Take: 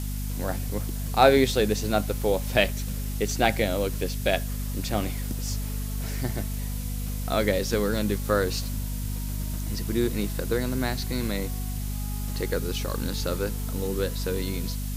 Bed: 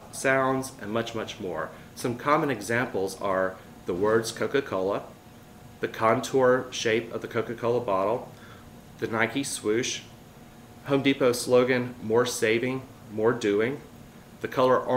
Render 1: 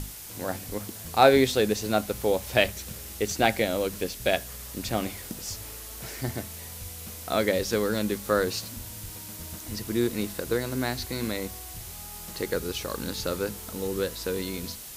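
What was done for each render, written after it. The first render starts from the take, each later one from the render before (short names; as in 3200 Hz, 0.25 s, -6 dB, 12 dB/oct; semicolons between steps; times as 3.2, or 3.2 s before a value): notches 50/100/150/200/250 Hz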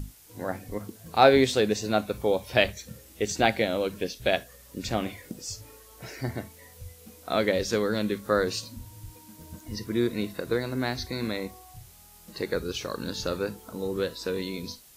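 noise print and reduce 12 dB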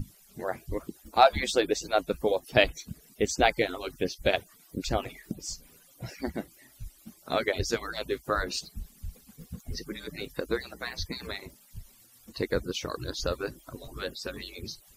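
median-filter separation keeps percussive; low shelf 150 Hz +10 dB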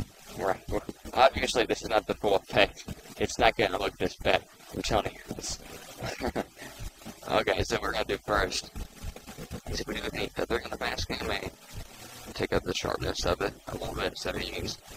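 per-bin compression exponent 0.6; transient shaper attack -7 dB, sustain -11 dB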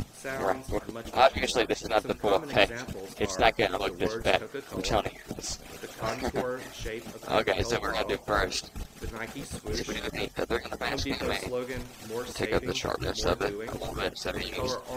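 add bed -12.5 dB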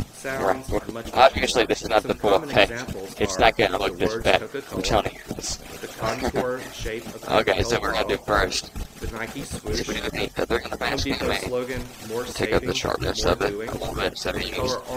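gain +6 dB; limiter -2 dBFS, peak gain reduction 2 dB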